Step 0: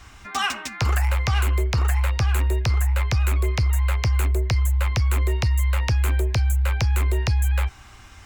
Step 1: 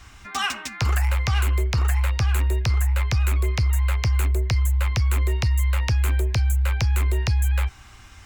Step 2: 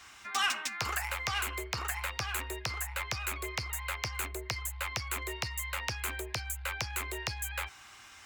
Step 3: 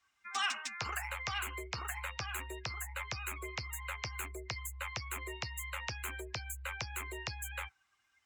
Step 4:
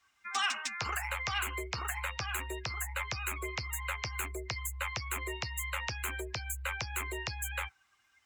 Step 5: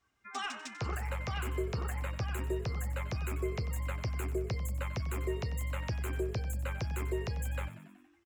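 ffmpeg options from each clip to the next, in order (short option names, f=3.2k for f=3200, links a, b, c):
-af "equalizer=f=570:w=0.58:g=-3"
-af "highpass=f=790:p=1,asoftclip=type=tanh:threshold=-20dB,volume=-1.5dB"
-af "afftdn=nr=22:nf=-42,volume=-4dB"
-af "alimiter=level_in=4.5dB:limit=-24dB:level=0:latency=1:release=165,volume=-4.5dB,volume=5dB"
-filter_complex "[0:a]firequalizer=gain_entry='entry(390,0);entry(910,-12);entry(2200,-16)':delay=0.05:min_phase=1,asplit=2[a][b];[b]asplit=6[c][d][e][f][g][h];[c]adelay=93,afreqshift=46,volume=-14dB[i];[d]adelay=186,afreqshift=92,volume=-18.4dB[j];[e]adelay=279,afreqshift=138,volume=-22.9dB[k];[f]adelay=372,afreqshift=184,volume=-27.3dB[l];[g]adelay=465,afreqshift=230,volume=-31.7dB[m];[h]adelay=558,afreqshift=276,volume=-36.2dB[n];[i][j][k][l][m][n]amix=inputs=6:normalize=0[o];[a][o]amix=inputs=2:normalize=0,volume=7dB"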